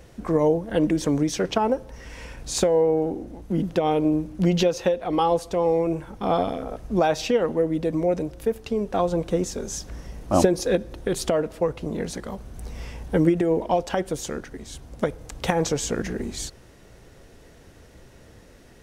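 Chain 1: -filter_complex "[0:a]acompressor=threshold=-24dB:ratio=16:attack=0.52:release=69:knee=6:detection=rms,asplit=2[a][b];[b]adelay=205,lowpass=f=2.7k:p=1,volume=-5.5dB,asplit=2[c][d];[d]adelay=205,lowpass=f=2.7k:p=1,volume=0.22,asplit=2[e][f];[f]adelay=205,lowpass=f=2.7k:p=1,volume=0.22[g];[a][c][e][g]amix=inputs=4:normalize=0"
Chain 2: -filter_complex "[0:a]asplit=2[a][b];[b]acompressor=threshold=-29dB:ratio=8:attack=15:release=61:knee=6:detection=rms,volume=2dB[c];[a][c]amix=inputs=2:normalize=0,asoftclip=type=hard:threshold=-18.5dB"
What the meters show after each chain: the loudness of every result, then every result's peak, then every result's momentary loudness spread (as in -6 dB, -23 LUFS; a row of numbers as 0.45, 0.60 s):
-31.5, -24.0 LUFS; -18.0, -18.5 dBFS; 16, 13 LU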